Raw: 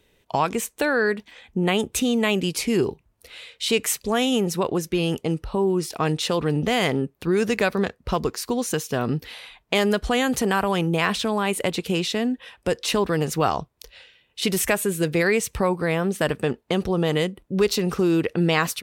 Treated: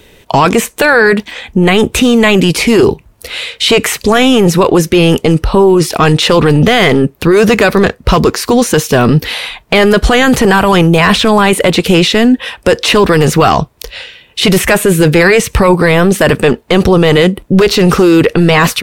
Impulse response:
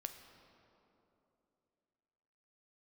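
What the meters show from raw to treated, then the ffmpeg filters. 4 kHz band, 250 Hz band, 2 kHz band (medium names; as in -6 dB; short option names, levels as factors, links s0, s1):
+14.5 dB, +14.5 dB, +15.0 dB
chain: -filter_complex "[0:a]acrossover=split=3100[s0][s1];[s1]acompressor=threshold=0.0141:ratio=4:attack=1:release=60[s2];[s0][s2]amix=inputs=2:normalize=0,apsyclip=14.1,volume=0.794"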